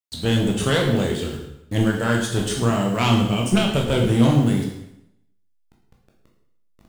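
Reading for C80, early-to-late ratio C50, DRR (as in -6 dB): 7.5 dB, 4.5 dB, -1.0 dB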